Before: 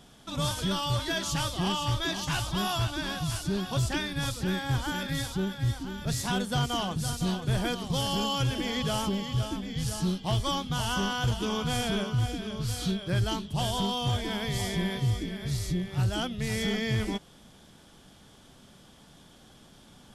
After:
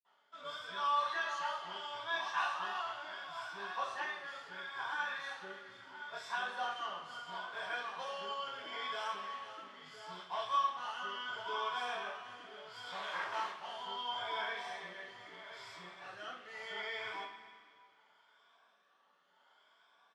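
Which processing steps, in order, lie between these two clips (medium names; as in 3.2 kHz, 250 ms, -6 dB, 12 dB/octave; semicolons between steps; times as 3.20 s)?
drifting ripple filter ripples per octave 1.7, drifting +0.73 Hz, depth 8 dB; in parallel at -5 dB: word length cut 6-bit, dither none; on the sum: rotary cabinet horn 0.75 Hz; 12.87–13.46 s: companded quantiser 2-bit; ladder band-pass 1.3 kHz, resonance 40%; doubling 45 ms -13.5 dB; reverberation, pre-delay 46 ms; trim +12 dB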